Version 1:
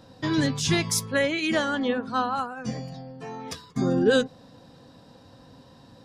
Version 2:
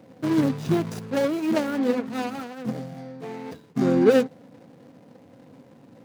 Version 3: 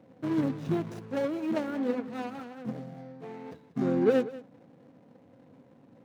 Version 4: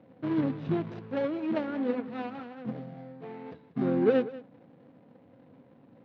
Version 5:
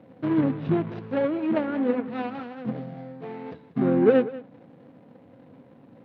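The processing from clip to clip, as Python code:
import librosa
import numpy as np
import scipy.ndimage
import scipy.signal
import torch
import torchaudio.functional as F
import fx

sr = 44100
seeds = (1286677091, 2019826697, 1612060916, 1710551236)

y1 = scipy.ndimage.median_filter(x, 41, mode='constant')
y1 = scipy.signal.sosfilt(scipy.signal.butter(2, 180.0, 'highpass', fs=sr, output='sos'), y1)
y1 = y1 * 10.0 ** (5.0 / 20.0)
y2 = fx.high_shelf(y1, sr, hz=4100.0, db=-10.0)
y2 = fx.notch(y2, sr, hz=4800.0, q=24.0)
y2 = y2 + 10.0 ** (-17.0 / 20.0) * np.pad(y2, (int(189 * sr / 1000.0), 0))[:len(y2)]
y2 = y2 * 10.0 ** (-6.5 / 20.0)
y3 = scipy.signal.sosfilt(scipy.signal.butter(4, 4000.0, 'lowpass', fs=sr, output='sos'), y2)
y4 = fx.env_lowpass_down(y3, sr, base_hz=3000.0, full_db=-28.0)
y4 = y4 * 10.0 ** (5.5 / 20.0)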